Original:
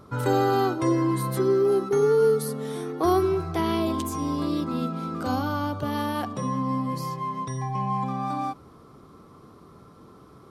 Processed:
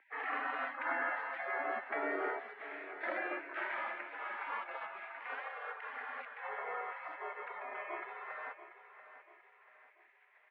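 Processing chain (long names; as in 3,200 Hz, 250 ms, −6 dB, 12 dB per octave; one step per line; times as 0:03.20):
gate on every frequency bin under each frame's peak −30 dB weak
0:01.34–0:03.49: parametric band 980 Hz −10.5 dB 0.82 octaves
repeating echo 687 ms, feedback 42%, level −13 dB
single-sideband voice off tune +92 Hz 190–2,000 Hz
level +13 dB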